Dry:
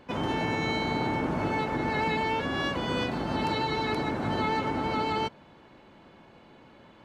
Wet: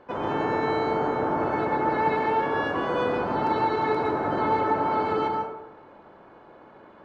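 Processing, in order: low-pass 3.8 kHz 6 dB/octave; high-order bell 760 Hz +9.5 dB 2.6 oct; plate-style reverb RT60 0.96 s, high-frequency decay 0.45×, pre-delay 100 ms, DRR 0.5 dB; trim -6 dB

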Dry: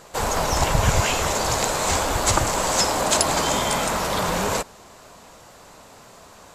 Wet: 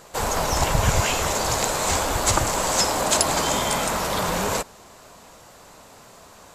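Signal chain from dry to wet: treble shelf 11 kHz +4.5 dB; trim -1 dB

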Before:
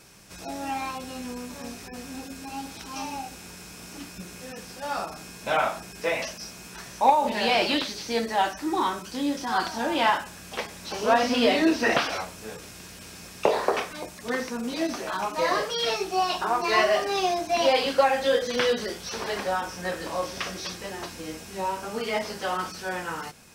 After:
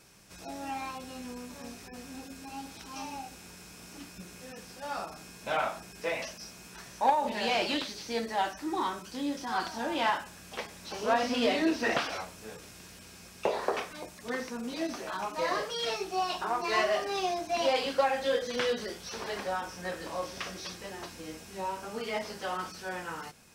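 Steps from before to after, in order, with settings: self-modulated delay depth 0.072 ms; 13.01–13.62 s: comb of notches 150 Hz; trim -6 dB

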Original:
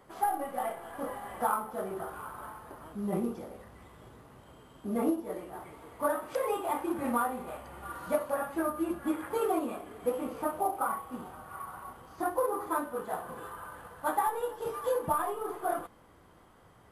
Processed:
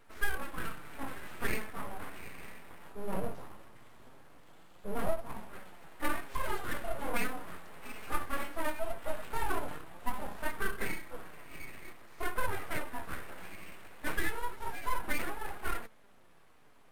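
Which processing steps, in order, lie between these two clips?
harmonic-percussive split harmonic +4 dB; full-wave rectifier; flange 0.19 Hz, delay 4.2 ms, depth 7.9 ms, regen +67%

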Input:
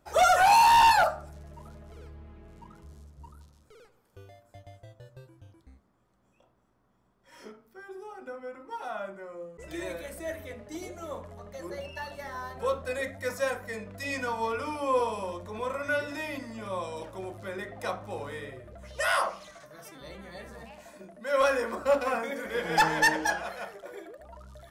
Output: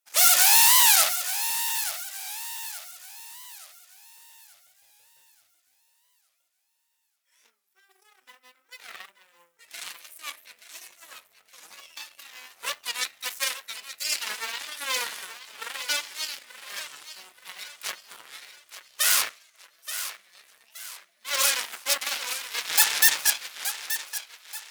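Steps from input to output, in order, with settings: companding laws mixed up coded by A; peaking EQ 2.3 kHz +6 dB 1.1 oct; in parallel at -11 dB: saturation -27 dBFS, distortion -5 dB; on the sum: Chebyshev shaper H 6 -7 dB, 7 -14 dB, 8 -20 dB, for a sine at -15 dBFS; differentiator; on a send: thinning echo 877 ms, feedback 40%, high-pass 380 Hz, level -11 dB; on the sum: warped record 45 rpm, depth 160 cents; trim +7 dB

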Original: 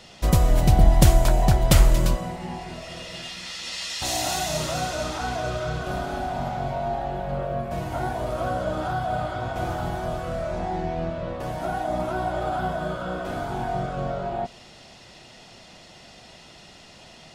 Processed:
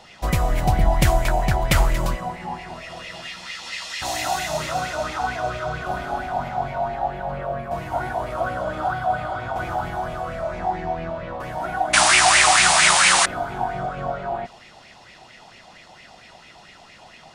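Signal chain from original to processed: painted sound noise, 11.93–13.26 s, 670–10000 Hz -16 dBFS; sweeping bell 4.4 Hz 780–2300 Hz +14 dB; trim -3 dB

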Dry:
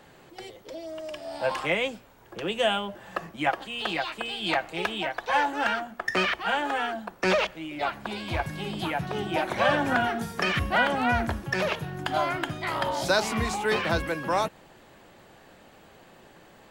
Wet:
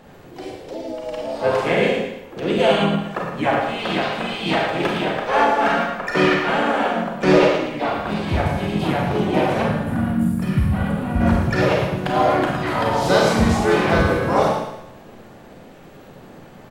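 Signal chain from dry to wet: tilt shelf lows +4.5 dB, about 790 Hz; on a send: feedback delay 113 ms, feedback 38%, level -7 dB; on the sum: time-frequency box 9.62–11.21 s, 250–8700 Hz -14 dB; Schroeder reverb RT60 0.57 s, combs from 31 ms, DRR -0.5 dB; in parallel at -7.5 dB: hard clipper -15 dBFS, distortion -19 dB; on the sum: harmony voices -4 st -4 dB, +5 st -12 dB

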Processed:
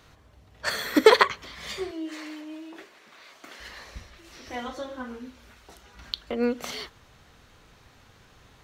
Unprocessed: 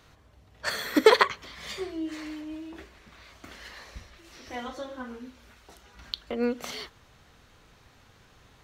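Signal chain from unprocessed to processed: 1.91–3.60 s: high-pass 330 Hz 12 dB/octave; trim +2 dB

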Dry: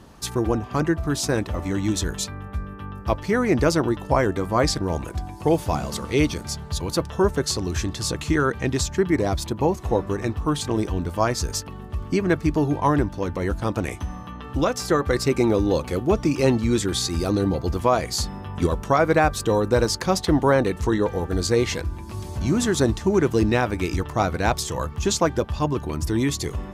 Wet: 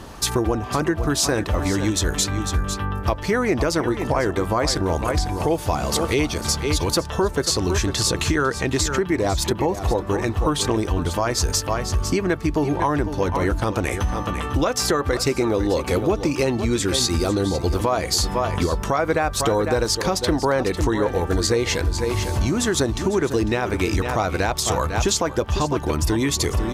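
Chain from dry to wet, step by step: delay 500 ms -12.5 dB; compression, threshold -26 dBFS, peak gain reduction 12 dB; peaking EQ 170 Hz -5.5 dB 1.7 oct; loudness maximiser +19.5 dB; trim -8.5 dB

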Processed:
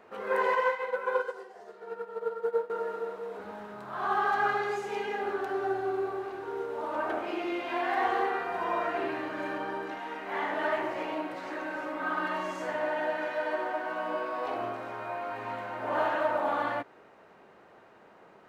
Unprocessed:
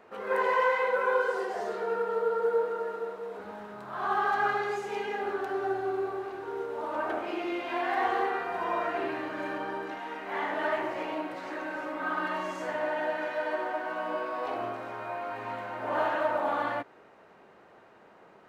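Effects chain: 0.55–2.70 s: upward expansion 2.5:1, over -34 dBFS

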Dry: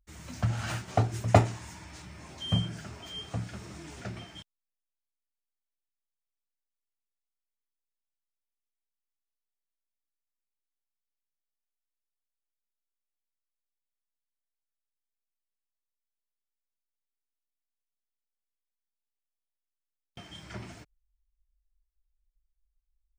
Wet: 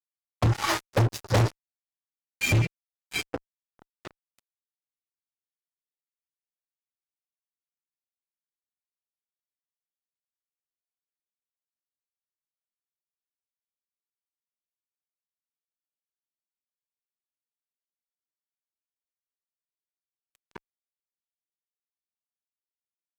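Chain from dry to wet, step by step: local Wiener filter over 15 samples; spectral noise reduction 23 dB; formant shift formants -5 st; fuzz box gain 36 dB, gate -43 dBFS; trim -5 dB

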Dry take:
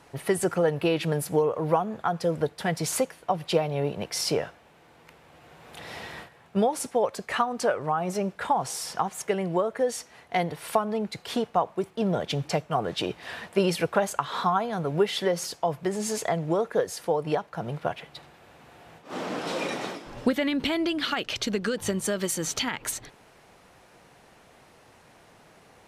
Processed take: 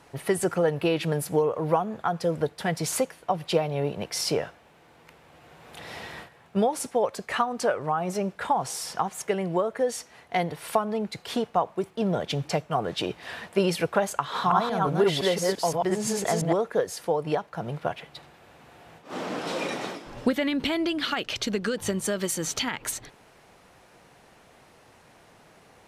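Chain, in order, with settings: 14.18–16.53 s: chunks repeated in reverse 172 ms, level -1 dB

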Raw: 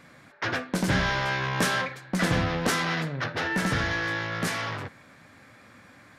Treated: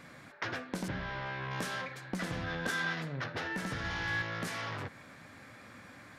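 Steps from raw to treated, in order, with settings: compression 6:1, threshold -35 dBFS, peak gain reduction 14 dB; 0.88–1.51 s: distance through air 210 m; 2.44–2.93 s: small resonant body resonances 1.6/3.5 kHz, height 15 dB; 3.79–4.22 s: flutter echo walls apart 9.4 m, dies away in 1.3 s

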